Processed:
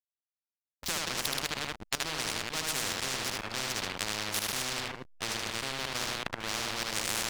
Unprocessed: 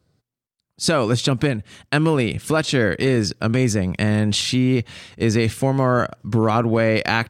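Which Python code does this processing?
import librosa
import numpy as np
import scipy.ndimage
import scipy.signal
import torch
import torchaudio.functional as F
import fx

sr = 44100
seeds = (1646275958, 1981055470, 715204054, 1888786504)

p1 = fx.reverse_delay(x, sr, ms=110, wet_db=-4.0)
p2 = scipy.signal.sosfilt(scipy.signal.butter(2, 3400.0, 'lowpass', fs=sr, output='sos'), p1)
p3 = fx.peak_eq(p2, sr, hz=66.0, db=-3.5, octaves=1.9)
p4 = fx.hum_notches(p3, sr, base_hz=60, count=8)
p5 = fx.backlash(p4, sr, play_db=-18.0)
p6 = fx.volume_shaper(p5, sr, bpm=123, per_beat=1, depth_db=-18, release_ms=92.0, shape='slow start')
p7 = p6 + fx.echo_single(p6, sr, ms=76, db=-4.5, dry=0)
p8 = fx.spectral_comp(p7, sr, ratio=10.0)
y = p8 * 10.0 ** (-8.0 / 20.0)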